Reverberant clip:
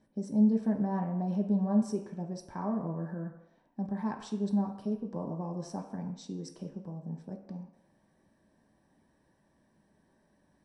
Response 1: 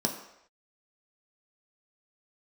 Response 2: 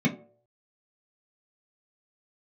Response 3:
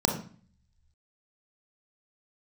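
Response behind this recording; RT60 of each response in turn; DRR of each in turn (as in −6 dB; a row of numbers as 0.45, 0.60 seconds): 1; non-exponential decay, 0.55 s, 0.45 s; 1.0, −4.0, 2.0 decibels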